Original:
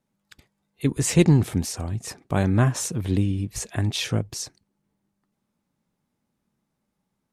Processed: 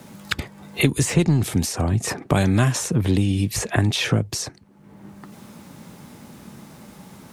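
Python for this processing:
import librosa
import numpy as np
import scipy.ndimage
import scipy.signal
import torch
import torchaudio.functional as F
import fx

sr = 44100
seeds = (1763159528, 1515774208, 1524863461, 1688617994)

p1 = scipy.signal.sosfilt(scipy.signal.butter(2, 67.0, 'highpass', fs=sr, output='sos'), x)
p2 = 10.0 ** (-17.0 / 20.0) * np.tanh(p1 / 10.0 ** (-17.0 / 20.0))
p3 = p1 + (p2 * 10.0 ** (-4.0 / 20.0))
y = fx.band_squash(p3, sr, depth_pct=100)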